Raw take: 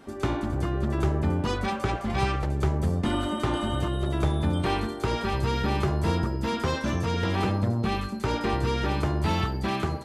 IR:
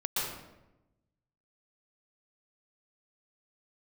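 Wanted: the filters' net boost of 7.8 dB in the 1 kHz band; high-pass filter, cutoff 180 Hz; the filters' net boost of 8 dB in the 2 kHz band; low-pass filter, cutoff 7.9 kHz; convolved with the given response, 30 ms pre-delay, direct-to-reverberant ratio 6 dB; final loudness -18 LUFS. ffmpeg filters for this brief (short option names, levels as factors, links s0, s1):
-filter_complex "[0:a]highpass=180,lowpass=7900,equalizer=f=1000:t=o:g=8,equalizer=f=2000:t=o:g=7.5,asplit=2[s0][s1];[1:a]atrim=start_sample=2205,adelay=30[s2];[s1][s2]afir=irnorm=-1:irlink=0,volume=0.224[s3];[s0][s3]amix=inputs=2:normalize=0,volume=2"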